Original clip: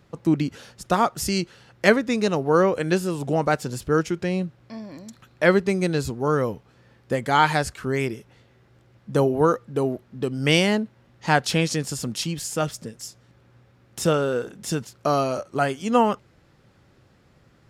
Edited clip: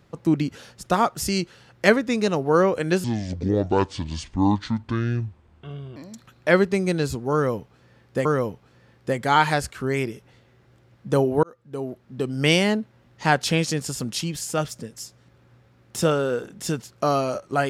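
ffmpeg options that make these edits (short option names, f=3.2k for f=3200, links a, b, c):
-filter_complex "[0:a]asplit=5[a][b][c][d][e];[a]atrim=end=3.044[f];[b]atrim=start=3.04:end=4.91,asetpts=PTS-STARTPTS,asetrate=28224,aresample=44100[g];[c]atrim=start=4.906:end=7.202[h];[d]atrim=start=6.278:end=9.46,asetpts=PTS-STARTPTS,afade=t=out:st=3.178:d=0.004:c=hsin[i];[e]atrim=start=9.46,asetpts=PTS-STARTPTS,afade=t=in:d=0.82[j];[f][g]acrossfade=d=0.004:c1=hsin:c2=hsin[k];[k][h]acrossfade=d=0.004:c1=hsin:c2=hsin[l];[i][j]concat=n=2:v=0:a=1[m];[l][m]acrossfade=d=0.004:c1=hsin:c2=hsin"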